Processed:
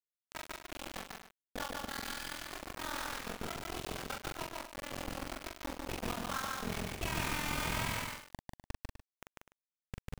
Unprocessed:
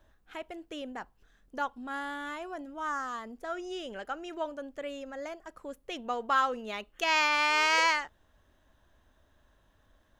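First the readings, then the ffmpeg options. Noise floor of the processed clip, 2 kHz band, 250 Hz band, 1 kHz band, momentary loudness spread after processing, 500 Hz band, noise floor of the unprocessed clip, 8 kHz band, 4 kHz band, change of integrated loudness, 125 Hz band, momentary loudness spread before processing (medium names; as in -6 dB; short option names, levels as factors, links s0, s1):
under -85 dBFS, -10.0 dB, -2.0 dB, -10.0 dB, 16 LU, -7.5 dB, -68 dBFS, +0.5 dB, -6.5 dB, -8.5 dB, no reading, 20 LU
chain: -filter_complex "[0:a]bandreject=f=60:t=h:w=6,bandreject=f=120:t=h:w=6,bandreject=f=180:t=h:w=6,bandreject=f=240:t=h:w=6,bandreject=f=300:t=h:w=6,aeval=exprs='val(0)*sin(2*PI*21*n/s)':c=same,asplit=2[s0][s1];[s1]alimiter=limit=0.0631:level=0:latency=1:release=22,volume=1.12[s2];[s0][s2]amix=inputs=2:normalize=0,acompressor=threshold=0.00708:ratio=2.5,acrossover=split=3100[s3][s4];[s4]acrusher=samples=33:mix=1:aa=0.000001[s5];[s3][s5]amix=inputs=2:normalize=0,asubboost=boost=7:cutoff=180,acrusher=bits=5:mix=0:aa=0.000001,asplit=2[s6][s7];[s7]adelay=42,volume=0.631[s8];[s6][s8]amix=inputs=2:normalize=0,aecho=1:1:145.8|250.7:0.794|0.251,volume=0.891"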